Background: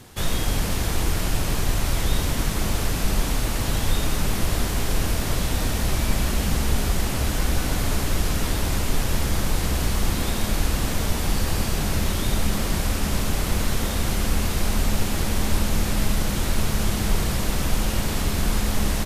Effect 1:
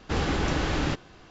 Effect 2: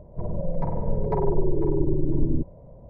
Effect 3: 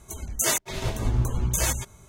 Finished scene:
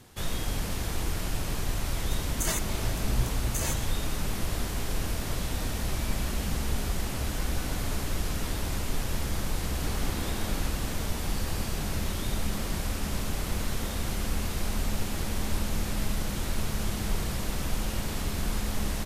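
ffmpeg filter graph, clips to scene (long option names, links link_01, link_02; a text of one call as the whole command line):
ffmpeg -i bed.wav -i cue0.wav -i cue1.wav -i cue2.wav -filter_complex "[0:a]volume=-7.5dB[link_01];[1:a]acompressor=threshold=-36dB:ratio=6:attack=3.2:release=140:knee=1:detection=peak[link_02];[3:a]atrim=end=2.08,asetpts=PTS-STARTPTS,volume=-7.5dB,afade=type=in:duration=0.004:curve=hsin,afade=type=out:start_time=2.076:duration=0.004:curve=hsin,adelay=2010[link_03];[link_02]atrim=end=1.3,asetpts=PTS-STARTPTS,afade=type=in:duration=0.004:curve=hsin,afade=type=out:start_time=1.296:duration=0.004:curve=hsin,adelay=9750[link_04];[link_01][link_03][link_04]amix=inputs=3:normalize=0" out.wav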